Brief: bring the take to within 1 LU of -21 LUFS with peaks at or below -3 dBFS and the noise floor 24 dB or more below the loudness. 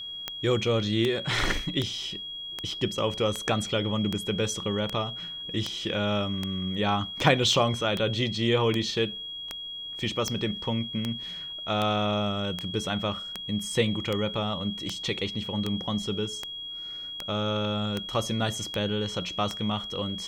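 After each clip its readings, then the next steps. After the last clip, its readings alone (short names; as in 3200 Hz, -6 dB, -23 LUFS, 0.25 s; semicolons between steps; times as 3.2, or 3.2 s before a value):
clicks 26; steady tone 3300 Hz; tone level -35 dBFS; loudness -28.5 LUFS; peak -6.5 dBFS; loudness target -21.0 LUFS
-> de-click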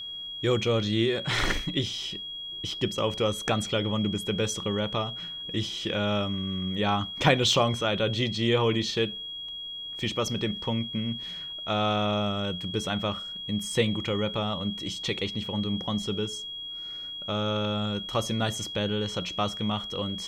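clicks 0; steady tone 3300 Hz; tone level -35 dBFS
-> notch 3300 Hz, Q 30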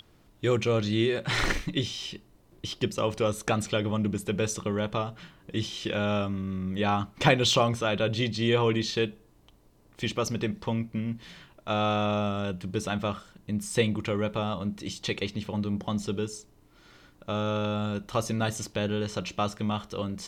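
steady tone none; loudness -29.0 LUFS; peak -7.0 dBFS; loudness target -21.0 LUFS
-> gain +8 dB; limiter -3 dBFS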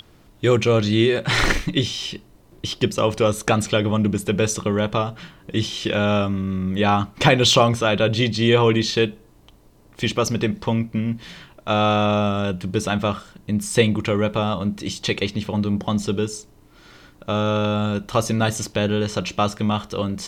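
loudness -21.0 LUFS; peak -3.0 dBFS; noise floor -52 dBFS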